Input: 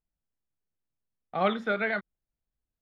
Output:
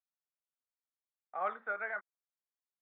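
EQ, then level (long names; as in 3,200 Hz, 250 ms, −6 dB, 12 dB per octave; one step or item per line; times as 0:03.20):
high-pass filter 790 Hz 12 dB per octave
transistor ladder low-pass 1,900 Hz, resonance 25%
high-frequency loss of the air 130 metres
0.0 dB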